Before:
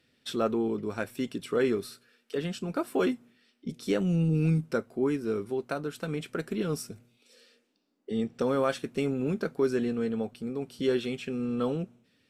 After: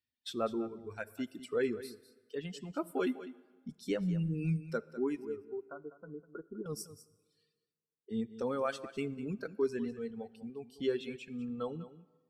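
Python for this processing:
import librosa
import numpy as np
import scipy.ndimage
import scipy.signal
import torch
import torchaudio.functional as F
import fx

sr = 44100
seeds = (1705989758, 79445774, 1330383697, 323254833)

y = fx.bin_expand(x, sr, power=1.5)
y = fx.dereverb_blind(y, sr, rt60_s=1.4)
y = fx.cheby_ripple(y, sr, hz=1500.0, ripple_db=9, at=(5.25, 6.66))
y = y + 10.0 ** (-14.5 / 20.0) * np.pad(y, (int(200 * sr / 1000.0), 0))[:len(y)]
y = fx.rev_plate(y, sr, seeds[0], rt60_s=1.6, hf_ratio=0.8, predelay_ms=0, drr_db=19.5)
y = y * librosa.db_to_amplitude(-3.5)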